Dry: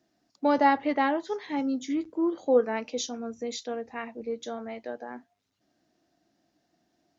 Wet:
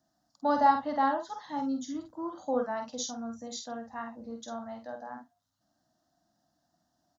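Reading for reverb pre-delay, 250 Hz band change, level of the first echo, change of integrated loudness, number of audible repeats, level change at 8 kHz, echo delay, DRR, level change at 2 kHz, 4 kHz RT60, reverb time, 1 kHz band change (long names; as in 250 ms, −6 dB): no reverb audible, −5.5 dB, −6.0 dB, −3.5 dB, 1, can't be measured, 48 ms, no reverb audible, −7.0 dB, no reverb audible, no reverb audible, 0.0 dB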